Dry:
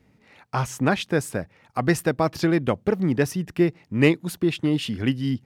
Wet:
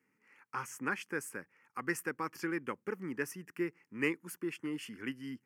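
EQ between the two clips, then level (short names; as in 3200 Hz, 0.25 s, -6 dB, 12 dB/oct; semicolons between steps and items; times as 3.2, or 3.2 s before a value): HPF 380 Hz 12 dB/oct; fixed phaser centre 1600 Hz, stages 4; -7.5 dB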